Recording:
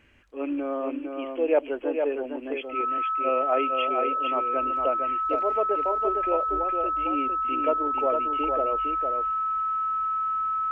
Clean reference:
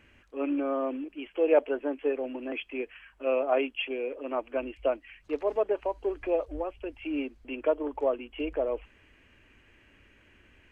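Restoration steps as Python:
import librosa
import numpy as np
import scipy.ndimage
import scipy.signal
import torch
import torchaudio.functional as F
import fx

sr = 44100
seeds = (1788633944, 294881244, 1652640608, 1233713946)

y = fx.notch(x, sr, hz=1300.0, q=30.0)
y = fx.fix_echo_inverse(y, sr, delay_ms=457, level_db=-5.0)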